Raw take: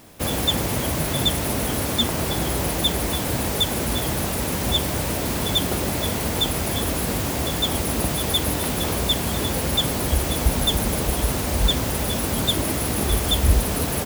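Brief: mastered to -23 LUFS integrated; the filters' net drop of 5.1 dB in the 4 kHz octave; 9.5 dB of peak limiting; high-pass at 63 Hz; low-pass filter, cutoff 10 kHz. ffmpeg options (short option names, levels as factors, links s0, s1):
-af "highpass=63,lowpass=10000,equalizer=f=4000:t=o:g=-6,volume=1.58,alimiter=limit=0.211:level=0:latency=1"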